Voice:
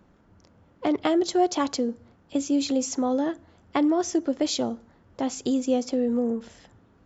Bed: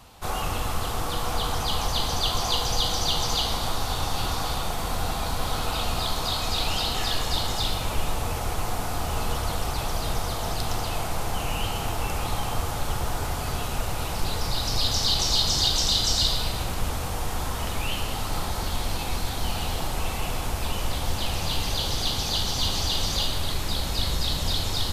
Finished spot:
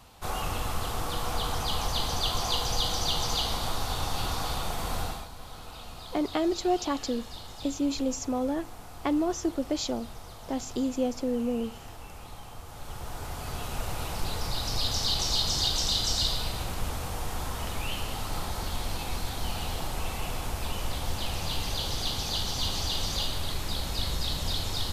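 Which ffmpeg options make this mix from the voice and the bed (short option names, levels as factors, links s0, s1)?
-filter_complex "[0:a]adelay=5300,volume=0.596[s0];[1:a]volume=2.66,afade=t=out:st=4.99:d=0.29:silence=0.223872,afade=t=in:st=12.65:d=1.25:silence=0.251189[s1];[s0][s1]amix=inputs=2:normalize=0"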